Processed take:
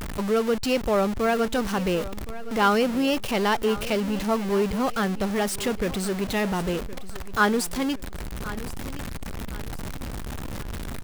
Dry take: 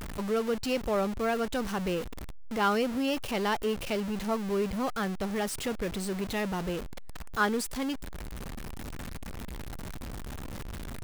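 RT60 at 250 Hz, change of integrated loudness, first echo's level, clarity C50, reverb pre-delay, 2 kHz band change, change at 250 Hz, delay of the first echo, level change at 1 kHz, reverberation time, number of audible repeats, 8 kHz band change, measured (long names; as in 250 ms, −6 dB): no reverb audible, +6.0 dB, −16.0 dB, no reverb audible, no reverb audible, +6.0 dB, +6.0 dB, 1,068 ms, +6.0 dB, no reverb audible, 3, +6.0 dB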